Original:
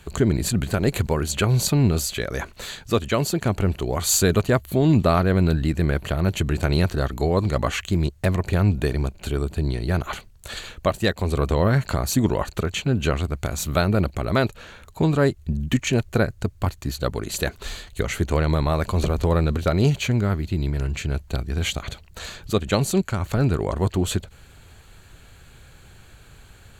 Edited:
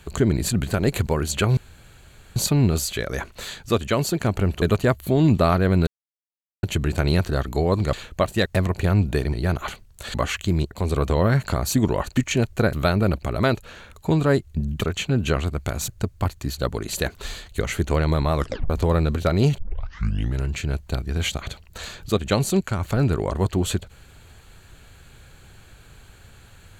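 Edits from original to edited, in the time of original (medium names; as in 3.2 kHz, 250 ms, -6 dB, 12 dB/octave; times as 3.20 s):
1.57 s: insert room tone 0.79 s
3.83–4.27 s: delete
5.52–6.28 s: mute
7.58–8.15 s: swap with 10.59–11.12 s
9.02–9.78 s: delete
12.58–13.65 s: swap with 15.73–16.29 s
18.77 s: tape stop 0.34 s
19.99 s: tape start 0.83 s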